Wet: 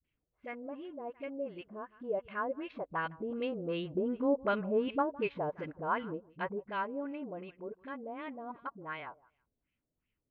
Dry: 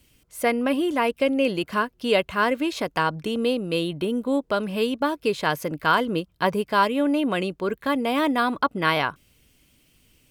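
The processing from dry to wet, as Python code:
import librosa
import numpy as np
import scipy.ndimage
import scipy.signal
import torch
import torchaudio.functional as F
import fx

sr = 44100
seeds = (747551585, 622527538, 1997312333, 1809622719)

p1 = fx.doppler_pass(x, sr, speed_mps=7, closest_m=5.4, pass_at_s=4.48)
p2 = scipy.signal.sosfilt(scipy.signal.butter(2, 3400.0, 'lowpass', fs=sr, output='sos'), p1)
p3 = fx.dispersion(p2, sr, late='highs', ms=42.0, hz=330.0)
p4 = p3 + fx.echo_feedback(p3, sr, ms=159, feedback_pct=18, wet_db=-22, dry=0)
p5 = fx.filter_lfo_lowpass(p4, sr, shape='sine', hz=2.7, low_hz=560.0, high_hz=2600.0, q=2.1)
y = p5 * 10.0 ** (-8.0 / 20.0)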